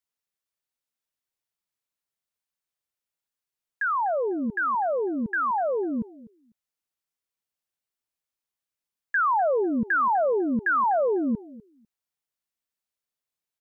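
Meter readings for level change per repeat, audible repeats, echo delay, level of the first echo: −16.0 dB, 2, 249 ms, −19.0 dB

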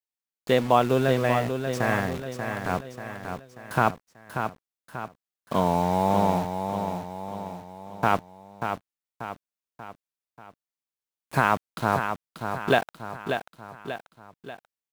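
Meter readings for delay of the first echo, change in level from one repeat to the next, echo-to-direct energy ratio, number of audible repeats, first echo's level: 587 ms, −6.0 dB, −6.0 dB, 4, −7.0 dB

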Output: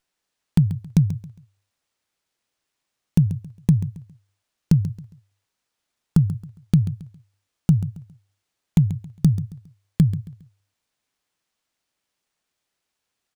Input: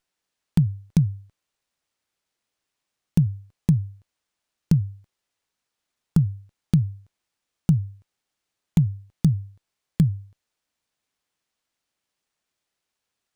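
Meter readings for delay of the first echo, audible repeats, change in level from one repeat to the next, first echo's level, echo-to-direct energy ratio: 136 ms, 3, −10.5 dB, −13.5 dB, −13.0 dB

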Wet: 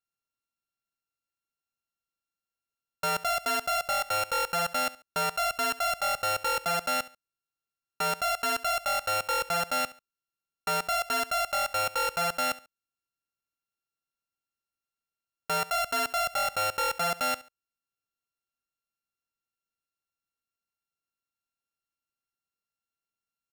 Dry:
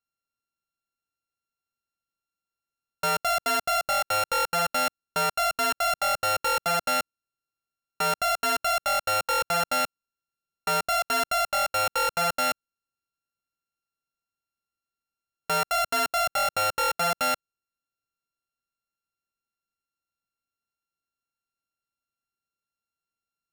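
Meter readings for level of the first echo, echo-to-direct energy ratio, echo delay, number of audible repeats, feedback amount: −18.5 dB, −18.0 dB, 70 ms, 2, 28%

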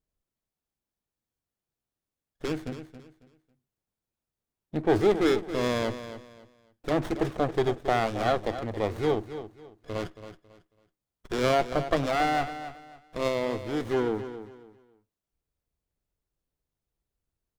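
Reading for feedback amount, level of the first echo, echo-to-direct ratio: 27%, −12.0 dB, −11.5 dB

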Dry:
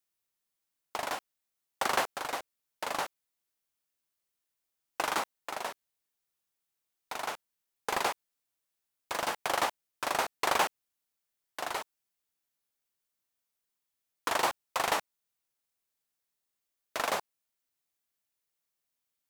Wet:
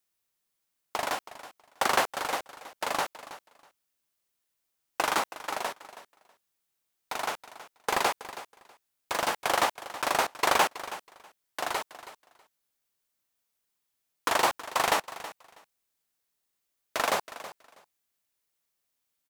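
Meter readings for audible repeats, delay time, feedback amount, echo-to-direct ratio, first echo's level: 2, 323 ms, 17%, −15.0 dB, −15.0 dB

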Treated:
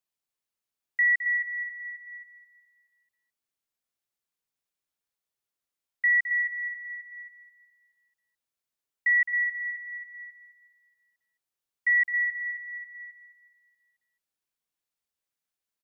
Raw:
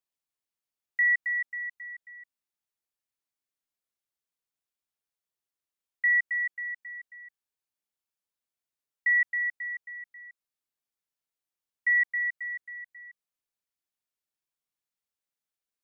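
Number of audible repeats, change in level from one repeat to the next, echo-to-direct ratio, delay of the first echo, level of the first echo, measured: 4, −6.5 dB, −9.5 dB, 213 ms, −10.5 dB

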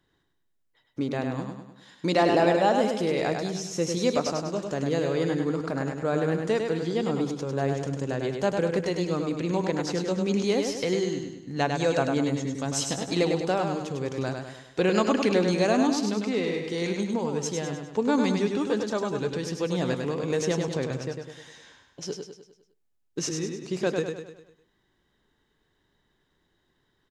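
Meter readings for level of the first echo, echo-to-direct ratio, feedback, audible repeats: −5.0 dB, −4.0 dB, 48%, 5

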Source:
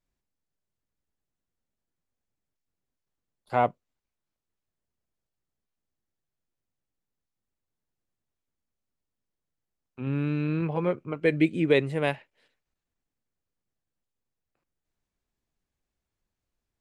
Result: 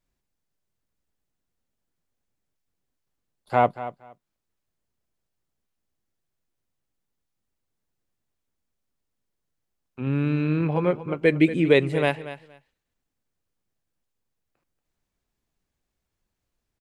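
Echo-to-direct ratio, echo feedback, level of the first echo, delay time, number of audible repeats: −14.0 dB, 17%, −14.0 dB, 234 ms, 2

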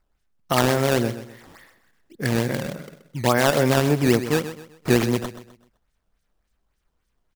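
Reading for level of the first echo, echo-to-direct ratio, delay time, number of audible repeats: −12.0 dB, −11.5 dB, 128 ms, 3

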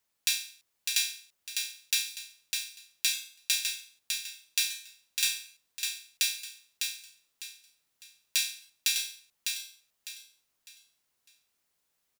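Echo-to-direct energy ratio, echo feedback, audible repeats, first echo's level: −4.5 dB, 31%, 3, −5.0 dB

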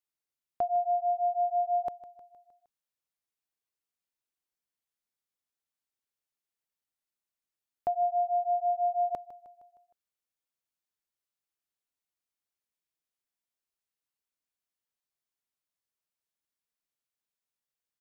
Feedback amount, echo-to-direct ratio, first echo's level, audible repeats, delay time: 54%, −15.5 dB, −17.0 dB, 4, 155 ms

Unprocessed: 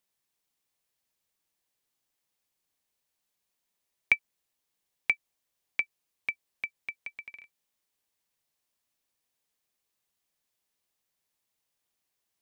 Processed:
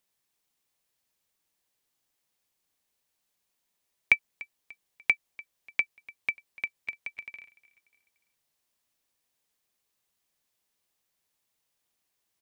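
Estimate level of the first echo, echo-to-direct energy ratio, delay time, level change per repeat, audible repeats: −21.0 dB, −20.0 dB, 294 ms, −7.5 dB, 2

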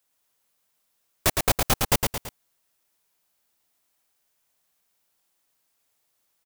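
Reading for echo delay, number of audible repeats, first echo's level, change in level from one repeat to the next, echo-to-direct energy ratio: 111 ms, 3, −4.0 dB, −6.5 dB, −3.0 dB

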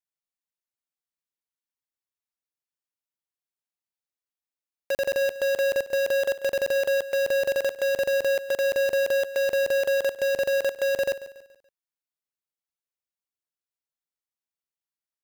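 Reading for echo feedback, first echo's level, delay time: 42%, −15.5 dB, 142 ms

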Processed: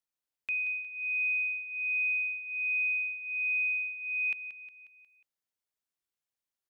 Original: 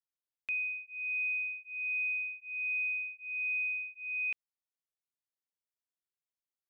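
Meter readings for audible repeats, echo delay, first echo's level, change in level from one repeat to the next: 5, 180 ms, −12.5 dB, −5.5 dB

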